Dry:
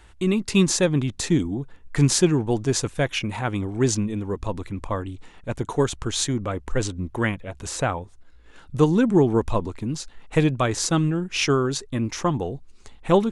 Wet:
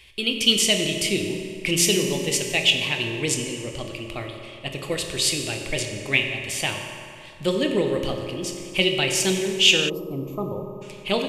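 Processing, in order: tone controls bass -3 dB, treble -6 dB; reverberation RT60 3.0 s, pre-delay 3 ms, DRR 2.5 dB; time-frequency box 11.67–12.77 s, 1.1–9.6 kHz -29 dB; tape speed +18%; resonant high shelf 1.9 kHz +11 dB, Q 3; band-stop 4.1 kHz, Q 15; trim -5 dB

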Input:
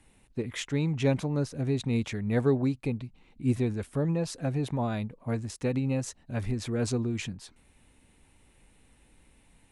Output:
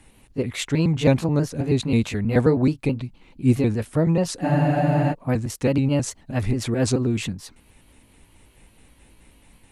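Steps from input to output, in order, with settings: pitch shift switched off and on +1.5 st, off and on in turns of 107 ms; spectral freeze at 4.45 s, 0.67 s; trim +8.5 dB

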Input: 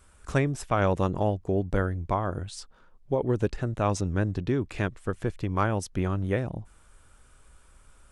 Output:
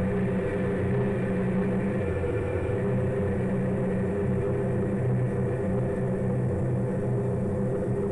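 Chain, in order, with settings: delay that grows with frequency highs early, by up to 908 ms; band-stop 660 Hz, Q 21; reverberation RT60 1.6 s, pre-delay 5 ms, DRR 1.5 dB; Paulstretch 30×, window 1.00 s, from 6.28 s; in parallel at 0 dB: peak limiter -27.5 dBFS, peak gain reduction 11 dB; on the sum: repeats whose band climbs or falls 170 ms, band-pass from 2.8 kHz, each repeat -0.7 oct, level -4 dB; saturation -22.5 dBFS, distortion -14 dB; bass shelf 130 Hz +4.5 dB; spectral freeze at 2.06 s, 0.69 s

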